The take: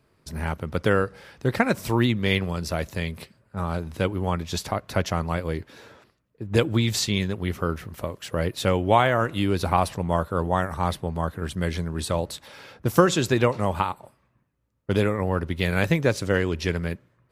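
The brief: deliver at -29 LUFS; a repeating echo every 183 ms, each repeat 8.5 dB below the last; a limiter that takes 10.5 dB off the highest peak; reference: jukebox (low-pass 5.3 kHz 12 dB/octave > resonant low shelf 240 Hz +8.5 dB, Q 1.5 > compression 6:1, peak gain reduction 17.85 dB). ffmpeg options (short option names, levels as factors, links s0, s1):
-af "alimiter=limit=0.251:level=0:latency=1,lowpass=5300,lowshelf=f=240:t=q:w=1.5:g=8.5,aecho=1:1:183|366|549|732:0.376|0.143|0.0543|0.0206,acompressor=threshold=0.0316:ratio=6,volume=1.78"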